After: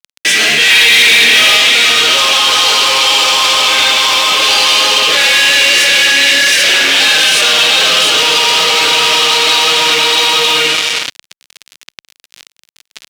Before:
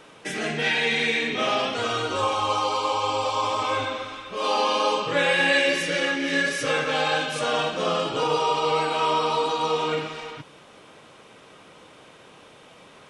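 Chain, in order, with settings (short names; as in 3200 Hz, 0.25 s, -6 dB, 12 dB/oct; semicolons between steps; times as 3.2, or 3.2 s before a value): tilt +2 dB/oct; de-hum 130.8 Hz, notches 6; 6.53–7.01 ring modulator 97 Hz; echo 0.682 s -4.5 dB; fuzz box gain 35 dB, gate -38 dBFS; weighting filter D; 0.7–1.57 sample leveller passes 1; maximiser +9.5 dB; gain -1 dB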